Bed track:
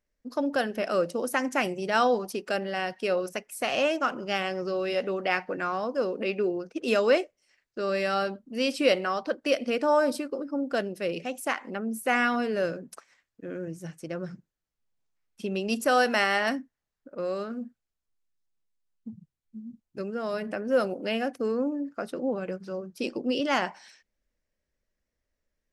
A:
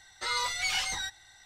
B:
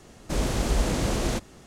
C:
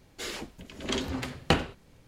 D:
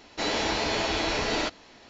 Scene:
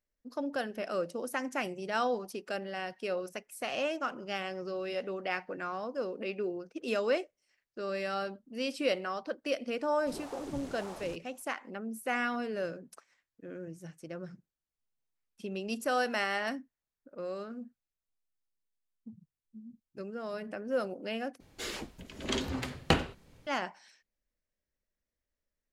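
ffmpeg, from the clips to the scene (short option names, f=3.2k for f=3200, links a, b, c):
-filter_complex "[0:a]volume=-7.5dB[a];[2:a]aeval=exprs='val(0)*sin(2*PI*440*n/s+440*0.85/1.8*sin(2*PI*1.8*n/s))':c=same[b];[a]asplit=2[c][d];[c]atrim=end=21.404[e];[3:a]atrim=end=2.07,asetpts=PTS-STARTPTS,volume=-2dB[f];[d]atrim=start=23.466[g];[b]atrim=end=1.66,asetpts=PTS-STARTPTS,volume=-17dB,afade=t=in:d=0.004:c=hsin,afade=t=out:st=1.656:d=0.004:c=hsin,adelay=9770[h];[e][f]acrossfade=d=0.004:c1=hsin:c2=hsin[i];[i][g]acrossfade=d=0.004:c1=hsin:c2=hsin[j];[j][h]amix=inputs=2:normalize=0"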